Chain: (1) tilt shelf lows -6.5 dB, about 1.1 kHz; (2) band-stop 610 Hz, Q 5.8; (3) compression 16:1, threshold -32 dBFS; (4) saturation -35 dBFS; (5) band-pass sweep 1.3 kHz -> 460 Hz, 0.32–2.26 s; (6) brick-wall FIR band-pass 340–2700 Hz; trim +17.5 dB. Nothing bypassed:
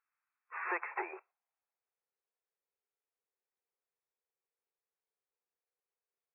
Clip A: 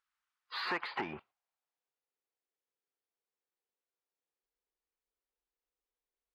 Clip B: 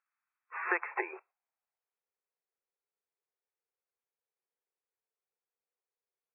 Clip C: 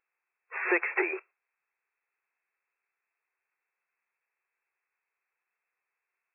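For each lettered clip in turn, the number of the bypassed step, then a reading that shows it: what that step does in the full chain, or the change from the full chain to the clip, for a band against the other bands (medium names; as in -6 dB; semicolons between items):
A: 6, 250 Hz band +5.5 dB; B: 4, distortion -9 dB; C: 5, 1 kHz band -11.0 dB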